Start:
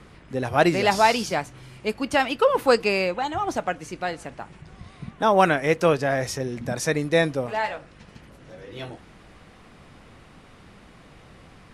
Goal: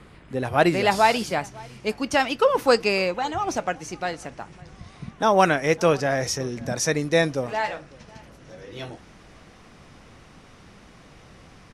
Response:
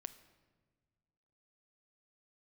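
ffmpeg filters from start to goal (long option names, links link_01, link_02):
-filter_complex "[0:a]asetnsamples=nb_out_samples=441:pad=0,asendcmd='1.44 equalizer g 7.5',equalizer=frequency=5800:width_type=o:width=0.43:gain=-4.5,asplit=2[link_01][link_02];[link_02]adelay=553.9,volume=-23dB,highshelf=frequency=4000:gain=-12.5[link_03];[link_01][link_03]amix=inputs=2:normalize=0"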